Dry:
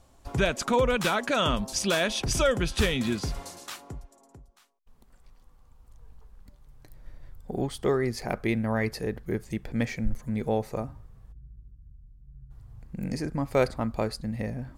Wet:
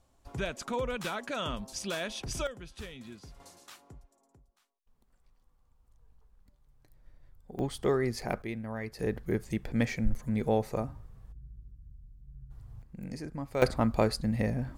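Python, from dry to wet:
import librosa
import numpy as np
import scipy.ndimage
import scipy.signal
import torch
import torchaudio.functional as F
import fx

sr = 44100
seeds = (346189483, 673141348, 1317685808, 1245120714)

y = fx.gain(x, sr, db=fx.steps((0.0, -9.5), (2.47, -19.0), (3.4, -11.5), (7.59, -2.5), (8.42, -10.5), (8.99, -0.5), (12.82, -8.5), (13.62, 2.5)))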